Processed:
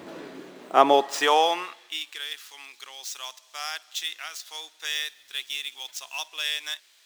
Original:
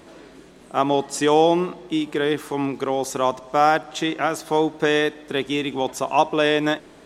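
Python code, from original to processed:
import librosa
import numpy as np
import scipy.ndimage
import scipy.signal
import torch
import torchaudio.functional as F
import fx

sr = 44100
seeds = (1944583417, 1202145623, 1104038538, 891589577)

y = scipy.signal.medfilt(x, 5)
y = fx.filter_sweep_highpass(y, sr, from_hz=150.0, to_hz=3900.0, start_s=0.21, end_s=2.24, q=0.77)
y = fx.quant_companded(y, sr, bits=6, at=(4.84, 6.28))
y = y * 10.0 ** (4.0 / 20.0)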